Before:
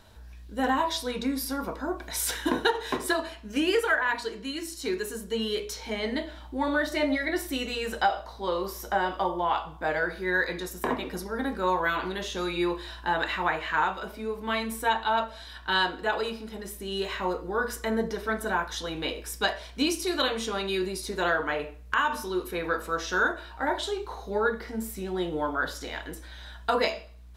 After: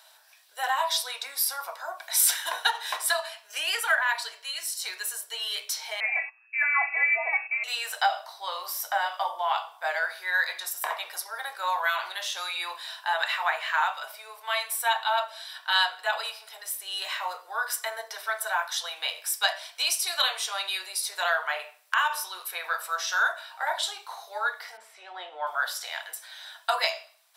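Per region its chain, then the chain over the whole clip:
6.00–7.64 s: gate -39 dBFS, range -20 dB + frequency inversion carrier 2.6 kHz
24.77–25.47 s: low-pass 2.6 kHz + bass shelf 210 Hz +12 dB
whole clip: elliptic high-pass 660 Hz, stop band 80 dB; treble shelf 4 kHz +11.5 dB; band-stop 6.7 kHz, Q 11

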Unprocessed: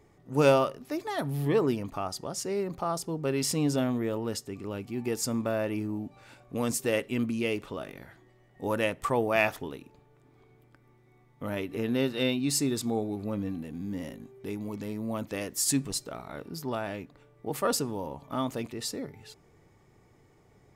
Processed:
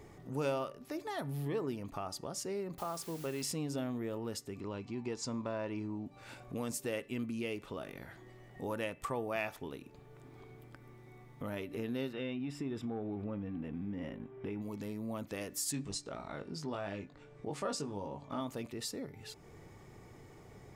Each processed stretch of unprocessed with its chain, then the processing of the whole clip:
2.78–3.43 s: bass shelf 460 Hz -3 dB + hum notches 50/100/150/200/250/300 Hz + word length cut 8-bit, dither triangular
4.60–6.06 s: low-pass 7 kHz 24 dB/octave + small resonant body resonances 990/4000 Hz, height 12 dB
12.13–14.62 s: waveshaping leveller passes 1 + compression 2.5:1, threshold -29 dBFS + Savitzky-Golay filter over 25 samples
15.72–18.41 s: low-pass 8.2 kHz 24 dB/octave + doubling 20 ms -6 dB
whole clip: compression 2:1, threshold -55 dBFS; de-hum 291.9 Hz, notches 9; trim +6.5 dB

